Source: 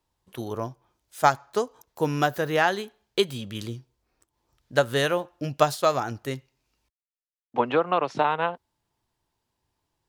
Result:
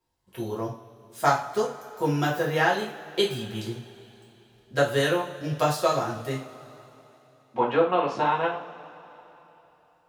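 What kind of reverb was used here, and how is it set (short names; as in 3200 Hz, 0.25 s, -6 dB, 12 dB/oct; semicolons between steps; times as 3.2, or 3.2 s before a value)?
two-slope reverb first 0.36 s, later 3.5 s, from -22 dB, DRR -5 dB; gain -6.5 dB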